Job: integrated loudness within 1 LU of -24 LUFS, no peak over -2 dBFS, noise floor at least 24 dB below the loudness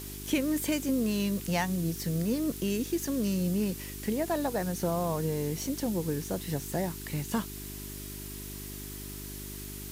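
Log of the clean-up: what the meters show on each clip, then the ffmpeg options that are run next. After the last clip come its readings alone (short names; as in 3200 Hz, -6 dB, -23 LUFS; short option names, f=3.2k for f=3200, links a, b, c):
hum 50 Hz; harmonics up to 400 Hz; hum level -41 dBFS; noise floor -41 dBFS; noise floor target -56 dBFS; loudness -32.0 LUFS; peak -15.5 dBFS; loudness target -24.0 LUFS
-> -af "bandreject=f=50:t=h:w=4,bandreject=f=100:t=h:w=4,bandreject=f=150:t=h:w=4,bandreject=f=200:t=h:w=4,bandreject=f=250:t=h:w=4,bandreject=f=300:t=h:w=4,bandreject=f=350:t=h:w=4,bandreject=f=400:t=h:w=4"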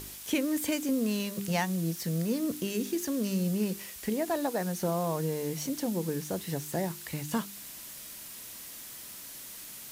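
hum none; noise floor -45 dBFS; noise floor target -57 dBFS
-> -af "afftdn=nr=12:nf=-45"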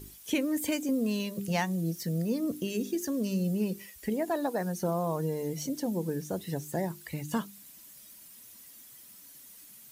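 noise floor -52 dBFS; noise floor target -56 dBFS
-> -af "afftdn=nr=6:nf=-52"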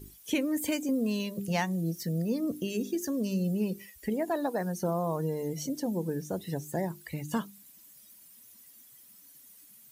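noise floor -56 dBFS; loudness -32.0 LUFS; peak -16.5 dBFS; loudness target -24.0 LUFS
-> -af "volume=8dB"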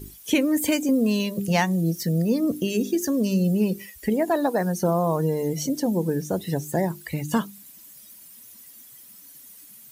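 loudness -24.0 LUFS; peak -8.5 dBFS; noise floor -48 dBFS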